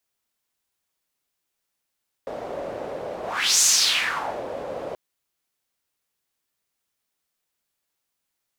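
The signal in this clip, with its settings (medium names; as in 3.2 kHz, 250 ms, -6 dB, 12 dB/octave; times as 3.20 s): whoosh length 2.68 s, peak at 1.34 s, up 0.41 s, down 0.88 s, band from 550 Hz, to 6.8 kHz, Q 3.5, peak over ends 15 dB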